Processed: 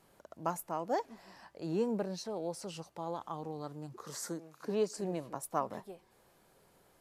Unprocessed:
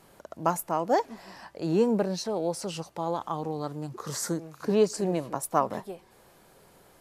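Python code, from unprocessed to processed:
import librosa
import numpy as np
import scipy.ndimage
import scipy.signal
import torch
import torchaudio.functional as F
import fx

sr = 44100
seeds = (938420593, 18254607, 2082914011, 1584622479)

y = fx.highpass(x, sr, hz=180.0, slope=12, at=(4.05, 4.97))
y = F.gain(torch.from_numpy(y), -9.0).numpy()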